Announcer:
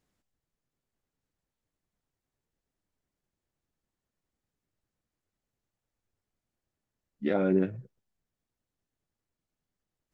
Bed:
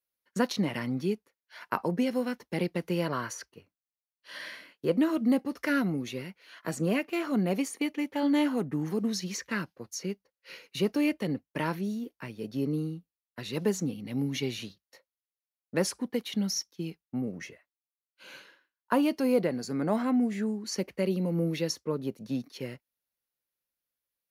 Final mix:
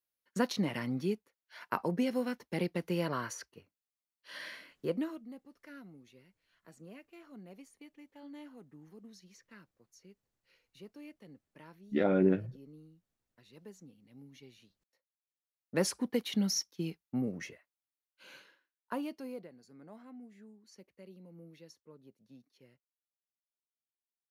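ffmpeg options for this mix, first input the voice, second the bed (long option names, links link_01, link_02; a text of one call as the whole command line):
ffmpeg -i stem1.wav -i stem2.wav -filter_complex "[0:a]adelay=4700,volume=-1dB[link_01];[1:a]volume=19dB,afade=type=out:start_time=4.72:duration=0.51:silence=0.1,afade=type=in:start_time=15.07:duration=0.89:silence=0.0749894,afade=type=out:start_time=17.24:duration=2.26:silence=0.0668344[link_02];[link_01][link_02]amix=inputs=2:normalize=0" out.wav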